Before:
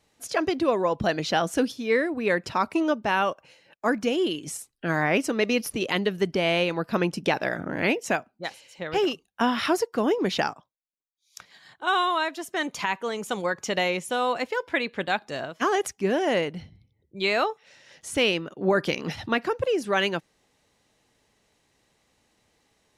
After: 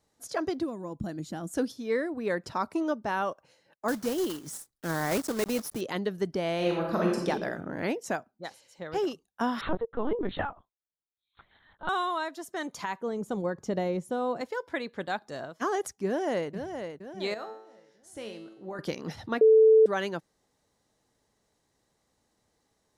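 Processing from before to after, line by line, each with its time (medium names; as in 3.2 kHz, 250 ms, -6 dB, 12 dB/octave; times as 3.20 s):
0.64–1.54 s: time-frequency box 360–6600 Hz -12 dB
3.88–5.81 s: block-companded coder 3-bit
6.56–7.28 s: reverb throw, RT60 0.88 s, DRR -2 dB
9.61–11.89 s: LPC vocoder at 8 kHz pitch kept
13.01–14.41 s: tilt shelf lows +8.5 dB, about 670 Hz
16.06–16.51 s: echo throw 470 ms, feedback 50%, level -7.5 dB
17.34–18.79 s: feedback comb 110 Hz, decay 0.73 s, mix 80%
19.41–19.86 s: bleep 440 Hz -9 dBFS
whole clip: peaking EQ 2.6 kHz -10 dB 0.79 oct; trim -5 dB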